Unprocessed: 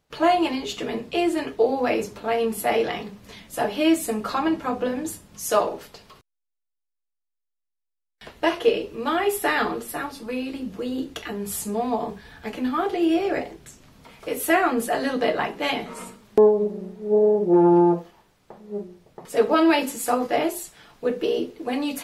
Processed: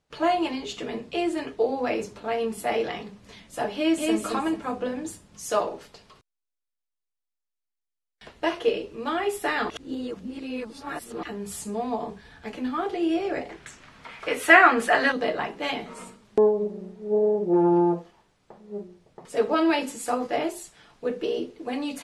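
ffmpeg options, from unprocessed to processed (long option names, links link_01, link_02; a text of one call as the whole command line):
ffmpeg -i in.wav -filter_complex "[0:a]asplit=2[link_01][link_02];[link_02]afade=type=in:start_time=3.75:duration=0.01,afade=type=out:start_time=4.17:duration=0.01,aecho=0:1:220|440|660|880:0.794328|0.198582|0.0496455|0.0124114[link_03];[link_01][link_03]amix=inputs=2:normalize=0,asettb=1/sr,asplit=3[link_04][link_05][link_06];[link_04]atrim=end=13.494[link_07];[link_05]atrim=start=13.49:end=15.12,asetpts=PTS-STARTPTS,afade=type=in:duration=0.004:curve=qsin,afade=type=out:start_time=1.626:duration=0.004:curve=qsin,equalizer=frequency=1700:width_type=o:width=2.4:gain=14[link_08];[link_06]atrim=start=15.116[link_09];[link_07][link_08]acrossfade=duration=0.004:curve1=hsin:curve2=qsin[link_10];[link_10][link_09]acrossfade=duration=0.004:curve1=qsin:curve2=hsin,asplit=3[link_11][link_12][link_13];[link_11]atrim=end=9.702[link_14];[link_12]atrim=start=9.698:end=11.232,asetpts=PTS-STARTPTS,areverse[link_15];[link_13]atrim=start=11.228[link_16];[link_14][link_15]acrossfade=duration=0.004:curve1=hsin:curve2=hsin[link_17];[link_17][link_16]acrossfade=duration=0.004:curve1=hsin:curve2=hsin,lowpass=frequency=10000:width=0.5412,lowpass=frequency=10000:width=1.3066,volume=-4dB" out.wav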